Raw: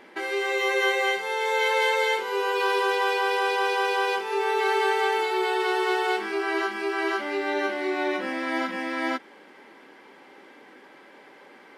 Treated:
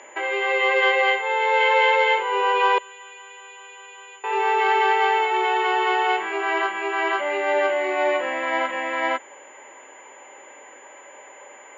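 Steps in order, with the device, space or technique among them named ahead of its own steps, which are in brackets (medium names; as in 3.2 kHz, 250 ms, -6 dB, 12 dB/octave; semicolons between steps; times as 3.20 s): 2.78–4.24 s: amplifier tone stack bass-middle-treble 6-0-2; toy sound module (decimation joined by straight lines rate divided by 4×; class-D stage that switches slowly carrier 7 kHz; cabinet simulation 530–4100 Hz, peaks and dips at 580 Hz +8 dB, 990 Hz +5 dB, 1.4 kHz -4 dB, 2 kHz +3 dB, 2.9 kHz +7 dB); trim +4.5 dB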